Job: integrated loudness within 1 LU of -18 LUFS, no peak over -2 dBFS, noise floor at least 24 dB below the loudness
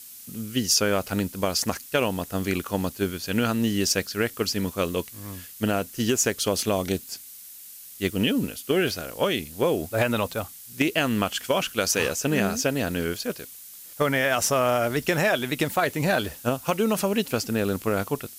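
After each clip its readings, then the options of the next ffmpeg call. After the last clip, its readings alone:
noise floor -44 dBFS; noise floor target -49 dBFS; loudness -25.0 LUFS; peak level -7.0 dBFS; loudness target -18.0 LUFS
-> -af "afftdn=nr=6:nf=-44"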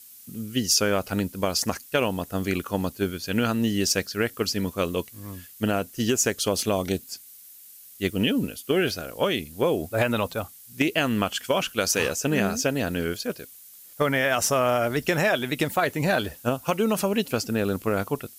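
noise floor -48 dBFS; noise floor target -49 dBFS
-> -af "afftdn=nr=6:nf=-48"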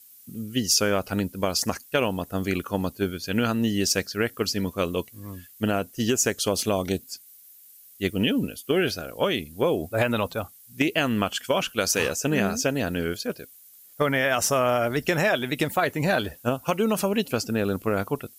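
noise floor -51 dBFS; loudness -25.0 LUFS; peak level -7.0 dBFS; loudness target -18.0 LUFS
-> -af "volume=2.24,alimiter=limit=0.794:level=0:latency=1"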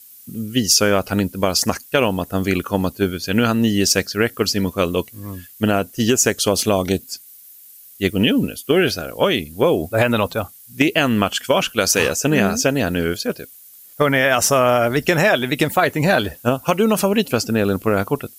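loudness -18.5 LUFS; peak level -2.0 dBFS; noise floor -44 dBFS

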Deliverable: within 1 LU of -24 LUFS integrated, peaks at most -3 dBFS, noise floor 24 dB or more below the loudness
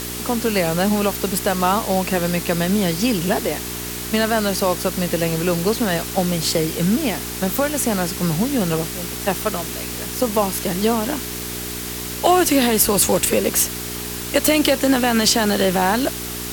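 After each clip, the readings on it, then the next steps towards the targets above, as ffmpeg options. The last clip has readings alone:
hum 60 Hz; highest harmonic 420 Hz; hum level -31 dBFS; noise floor -29 dBFS; noise floor target -44 dBFS; loudness -19.5 LUFS; peak level -2.0 dBFS; loudness target -24.0 LUFS
-> -af "bandreject=f=60:t=h:w=4,bandreject=f=120:t=h:w=4,bandreject=f=180:t=h:w=4,bandreject=f=240:t=h:w=4,bandreject=f=300:t=h:w=4,bandreject=f=360:t=h:w=4,bandreject=f=420:t=h:w=4"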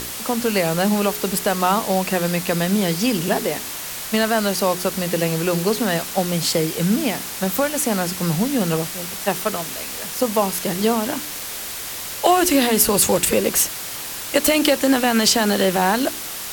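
hum not found; noise floor -30 dBFS; noise floor target -44 dBFS
-> -af "afftdn=nr=14:nf=-30"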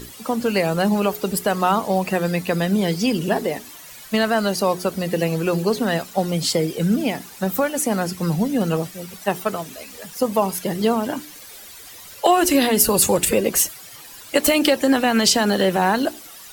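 noise floor -41 dBFS; noise floor target -44 dBFS
-> -af "afftdn=nr=6:nf=-41"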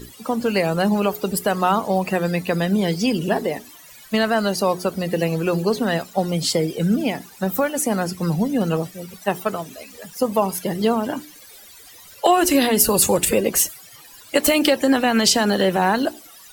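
noise floor -45 dBFS; loudness -20.0 LUFS; peak level -3.0 dBFS; loudness target -24.0 LUFS
-> -af "volume=0.631"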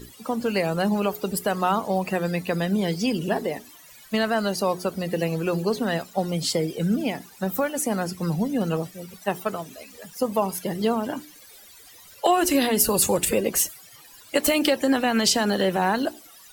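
loudness -24.0 LUFS; peak level -7.0 dBFS; noise floor -49 dBFS

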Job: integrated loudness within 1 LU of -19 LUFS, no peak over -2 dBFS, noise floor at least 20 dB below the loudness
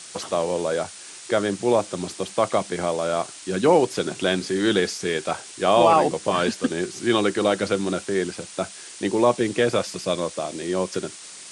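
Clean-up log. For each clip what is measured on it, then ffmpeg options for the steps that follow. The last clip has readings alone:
noise floor -41 dBFS; noise floor target -43 dBFS; loudness -23.0 LUFS; peak level -5.0 dBFS; loudness target -19.0 LUFS
-> -af "afftdn=nr=6:nf=-41"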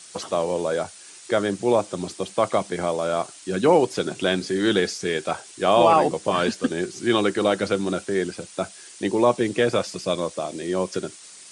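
noise floor -45 dBFS; loudness -23.5 LUFS; peak level -5.5 dBFS; loudness target -19.0 LUFS
-> -af "volume=1.68,alimiter=limit=0.794:level=0:latency=1"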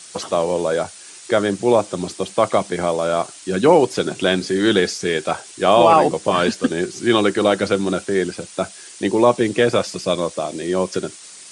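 loudness -19.0 LUFS; peak level -2.0 dBFS; noise floor -40 dBFS

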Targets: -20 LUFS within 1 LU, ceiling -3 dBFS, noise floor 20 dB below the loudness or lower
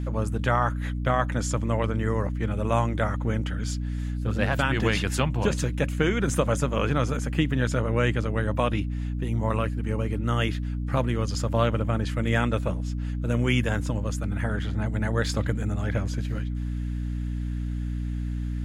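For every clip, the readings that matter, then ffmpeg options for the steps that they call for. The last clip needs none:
hum 60 Hz; highest harmonic 300 Hz; hum level -27 dBFS; loudness -27.0 LUFS; peak level -8.0 dBFS; loudness target -20.0 LUFS
-> -af "bandreject=f=60:t=h:w=6,bandreject=f=120:t=h:w=6,bandreject=f=180:t=h:w=6,bandreject=f=240:t=h:w=6,bandreject=f=300:t=h:w=6"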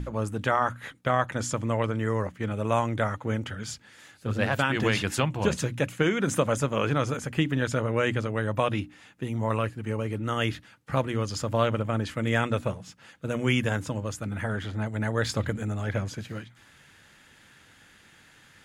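hum not found; loudness -28.0 LUFS; peak level -9.0 dBFS; loudness target -20.0 LUFS
-> -af "volume=2.51,alimiter=limit=0.708:level=0:latency=1"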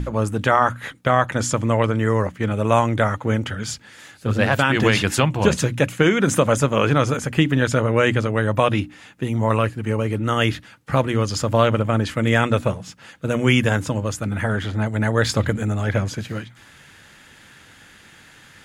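loudness -20.5 LUFS; peak level -3.0 dBFS; noise floor -49 dBFS

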